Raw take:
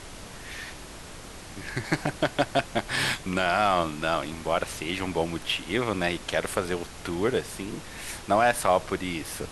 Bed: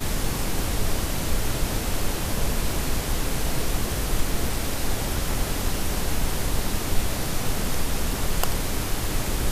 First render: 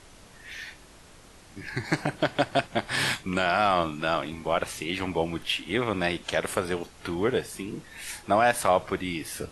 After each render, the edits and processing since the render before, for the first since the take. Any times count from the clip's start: noise print and reduce 9 dB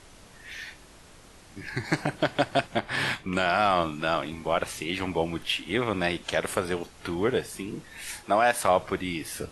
2.79–3.33 s: tone controls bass -1 dB, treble -9 dB; 8.23–8.65 s: bass shelf 140 Hz -12 dB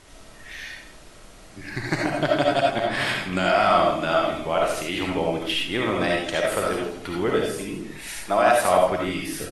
delay 160 ms -13 dB; algorithmic reverb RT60 0.42 s, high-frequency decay 0.35×, pre-delay 30 ms, DRR -1.5 dB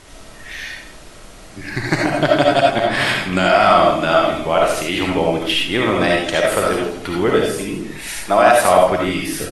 trim +7 dB; peak limiter -1 dBFS, peak gain reduction 2 dB

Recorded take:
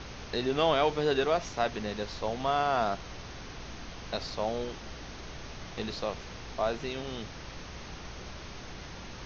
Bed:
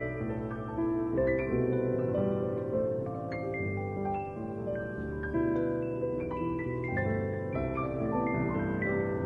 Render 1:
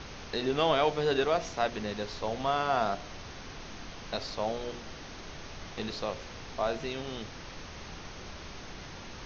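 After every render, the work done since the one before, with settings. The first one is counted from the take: de-hum 60 Hz, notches 12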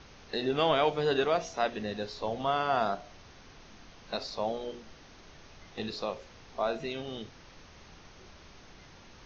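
noise print and reduce 9 dB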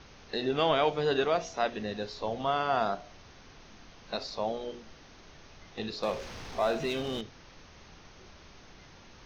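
6.03–7.21 s: power-law waveshaper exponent 0.7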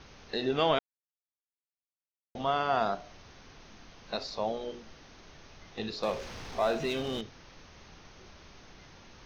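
0.79–2.35 s: mute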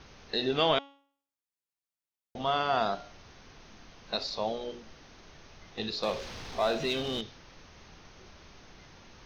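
de-hum 278.4 Hz, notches 24; dynamic bell 3.9 kHz, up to +6 dB, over -52 dBFS, Q 1.4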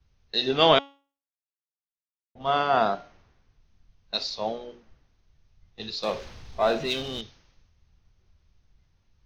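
three bands expanded up and down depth 100%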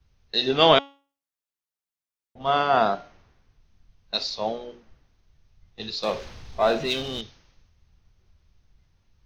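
trim +2 dB

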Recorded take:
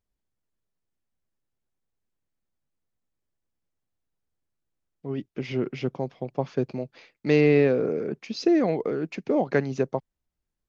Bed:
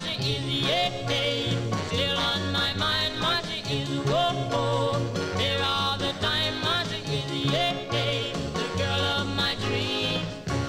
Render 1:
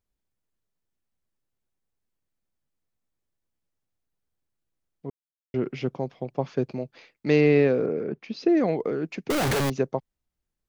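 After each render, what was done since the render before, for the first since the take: 5.10–5.54 s: mute; 7.86–8.57 s: distance through air 160 m; 9.30–9.70 s: one-bit comparator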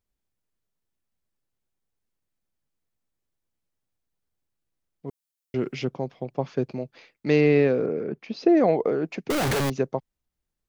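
5.07–5.85 s: treble shelf 3.5 kHz +10.5 dB; 8.26–9.20 s: peaking EQ 690 Hz +7 dB 1.4 oct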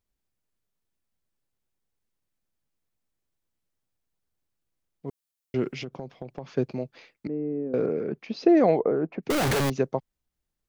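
5.68–6.52 s: compression 10:1, threshold -31 dBFS; 7.27–7.74 s: ladder band-pass 260 Hz, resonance 50%; 8.79–9.23 s: low-pass 1.4 kHz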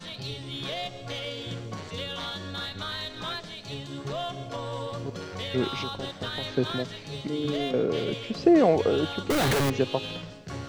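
add bed -9 dB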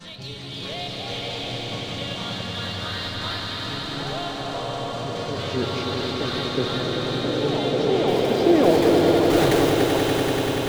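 on a send: echo with a slow build-up 96 ms, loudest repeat 5, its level -6.5 dB; on the sum: ever faster or slower copies 348 ms, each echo +2 st, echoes 2, each echo -6 dB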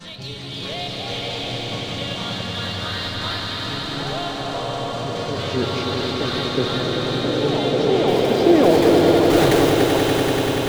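trim +3 dB; peak limiter -2 dBFS, peak gain reduction 1.5 dB

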